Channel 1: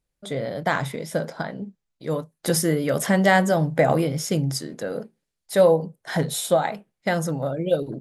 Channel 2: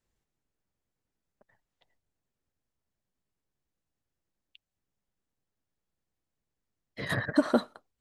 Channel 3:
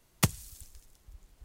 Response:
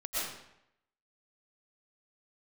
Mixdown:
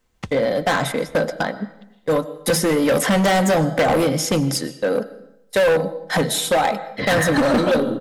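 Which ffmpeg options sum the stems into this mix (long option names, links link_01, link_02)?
-filter_complex "[0:a]agate=range=-39dB:threshold=-31dB:ratio=16:detection=peak,lowshelf=frequency=130:gain=-10,acrossover=split=620|4100[link_01][link_02][link_03];[link_01]acompressor=threshold=-21dB:ratio=4[link_04];[link_02]acompressor=threshold=-23dB:ratio=4[link_05];[link_03]acompressor=threshold=-34dB:ratio=4[link_06];[link_04][link_05][link_06]amix=inputs=3:normalize=0,volume=2dB,asplit=2[link_07][link_08];[link_08]volume=-20.5dB[link_09];[1:a]volume=2.5dB,asplit=2[link_10][link_11];[link_11]volume=-8dB[link_12];[2:a]lowpass=3200,volume=-11dB[link_13];[3:a]atrim=start_sample=2205[link_14];[link_09][link_12]amix=inputs=2:normalize=0[link_15];[link_15][link_14]afir=irnorm=-1:irlink=0[link_16];[link_07][link_10][link_13][link_16]amix=inputs=4:normalize=0,aecho=1:1:3.9:0.35,acontrast=79,asoftclip=type=hard:threshold=-13.5dB"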